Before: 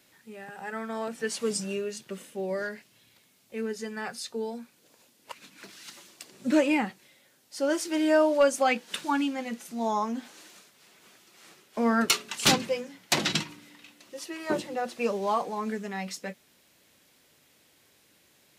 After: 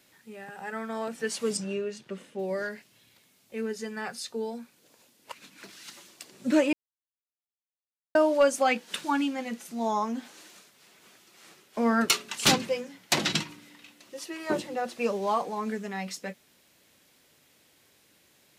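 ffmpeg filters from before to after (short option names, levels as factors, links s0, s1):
-filter_complex "[0:a]asettb=1/sr,asplit=3[s0][s1][s2];[s0]atrim=end=1.574[s3];[s1]atrim=start=1.57:end=2.39,asetpts=PTS-STARTPTS,afade=t=in:d=0.004:c=qsin,afade=t=out:st=0.816:d=0.004:c=qsin,aemphasis=mode=reproduction:type=50fm[s4];[s2]atrim=start=2.386[s5];[s3][s4]acrossfade=d=0.004:c1=hsin:c2=qsin[s6];[s6][s5]acrossfade=d=0.004:c1=qsin:c2=hsin,asplit=3[s7][s8][s9];[s7]atrim=end=6.73,asetpts=PTS-STARTPTS,afade=t=out:st=6.726:d=0.004:c=hsin[s10];[s8]atrim=start=6.73:end=8.15,asetpts=PTS-STARTPTS,volume=0[s11];[s9]atrim=start=8.15,asetpts=PTS-STARTPTS,afade=t=in:d=0.004:c=hsin[s12];[s10][s11][s12]concat=n=3:v=0:a=1"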